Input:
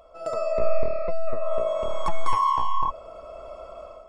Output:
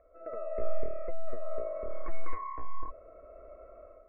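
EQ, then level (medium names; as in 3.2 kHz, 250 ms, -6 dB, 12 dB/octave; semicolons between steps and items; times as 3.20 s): steep low-pass 2.2 kHz 72 dB/octave; static phaser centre 370 Hz, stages 4; -5.5 dB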